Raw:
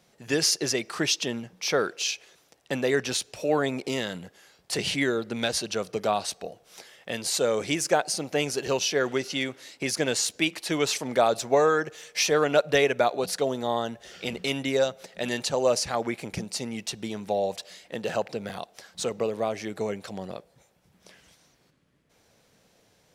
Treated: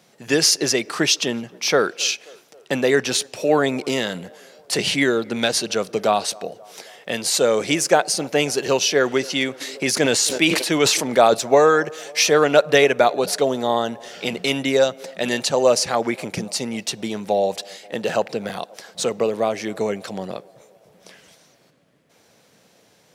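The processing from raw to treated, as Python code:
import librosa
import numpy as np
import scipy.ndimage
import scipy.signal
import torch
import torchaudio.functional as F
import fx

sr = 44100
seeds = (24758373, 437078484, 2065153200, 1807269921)

y = scipy.signal.sosfilt(scipy.signal.butter(2, 130.0, 'highpass', fs=sr, output='sos'), x)
y = fx.echo_banded(y, sr, ms=266, feedback_pct=67, hz=590.0, wet_db=-22.5)
y = fx.sustainer(y, sr, db_per_s=48.0, at=(9.6, 11.33), fade=0.02)
y = y * librosa.db_to_amplitude(7.0)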